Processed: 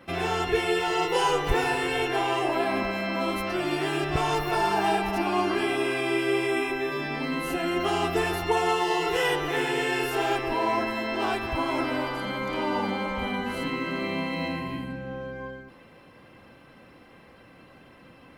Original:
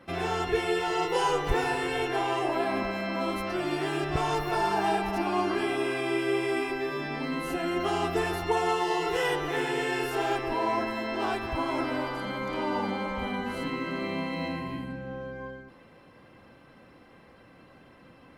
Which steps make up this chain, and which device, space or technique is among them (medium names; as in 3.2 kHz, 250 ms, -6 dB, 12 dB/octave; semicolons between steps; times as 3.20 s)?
6.47–6.92 s: band-stop 4.7 kHz, Q 8.6; presence and air boost (peaking EQ 2.7 kHz +3 dB 0.77 oct; treble shelf 12 kHz +6.5 dB); trim +2 dB